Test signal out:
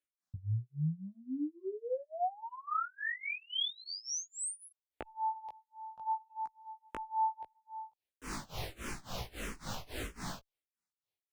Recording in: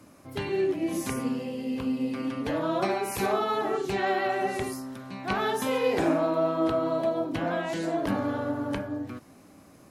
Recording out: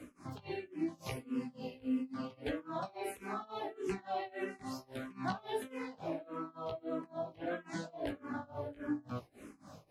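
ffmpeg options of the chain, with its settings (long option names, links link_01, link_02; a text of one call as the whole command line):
ffmpeg -i in.wav -filter_complex "[0:a]acompressor=threshold=-36dB:ratio=10,flanger=delay=16:depth=3.5:speed=0.77,highshelf=frequency=9100:gain=-9.5,tremolo=f=3.6:d=0.95,asplit=2[link_01][link_02];[link_02]afreqshift=-1.6[link_03];[link_01][link_03]amix=inputs=2:normalize=1,volume=9dB" out.wav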